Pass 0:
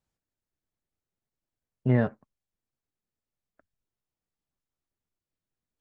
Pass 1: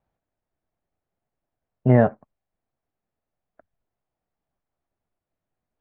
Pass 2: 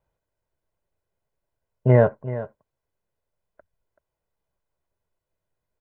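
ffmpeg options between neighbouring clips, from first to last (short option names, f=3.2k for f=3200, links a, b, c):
-af "lowpass=2.1k,equalizer=f=690:w=2.2:g=8.5,volume=6dB"
-af "aecho=1:1:2:0.51,aecho=1:1:381:0.2"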